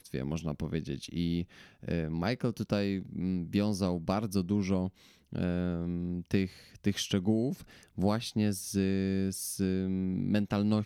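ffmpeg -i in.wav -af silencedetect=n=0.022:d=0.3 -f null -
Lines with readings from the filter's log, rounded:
silence_start: 1.43
silence_end: 1.88 | silence_duration: 0.45
silence_start: 4.88
silence_end: 5.33 | silence_duration: 0.45
silence_start: 6.46
silence_end: 6.84 | silence_duration: 0.38
silence_start: 7.54
silence_end: 7.98 | silence_duration: 0.45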